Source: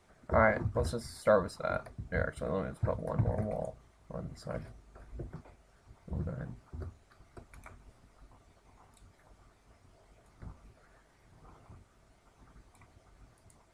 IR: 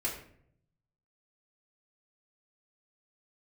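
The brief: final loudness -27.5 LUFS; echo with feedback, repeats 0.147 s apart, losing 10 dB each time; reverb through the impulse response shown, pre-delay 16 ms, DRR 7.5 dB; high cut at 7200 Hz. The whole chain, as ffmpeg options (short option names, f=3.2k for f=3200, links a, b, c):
-filter_complex "[0:a]lowpass=7.2k,aecho=1:1:147|294|441|588:0.316|0.101|0.0324|0.0104,asplit=2[a][b];[1:a]atrim=start_sample=2205,adelay=16[c];[b][c]afir=irnorm=-1:irlink=0,volume=-12dB[d];[a][d]amix=inputs=2:normalize=0,volume=6dB"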